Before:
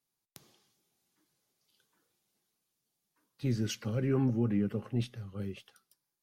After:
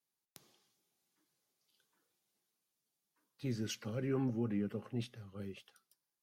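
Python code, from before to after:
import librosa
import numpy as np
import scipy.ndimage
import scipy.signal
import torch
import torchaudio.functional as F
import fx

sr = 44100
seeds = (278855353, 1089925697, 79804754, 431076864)

y = fx.low_shelf(x, sr, hz=140.0, db=-8.0)
y = y * librosa.db_to_amplitude(-4.0)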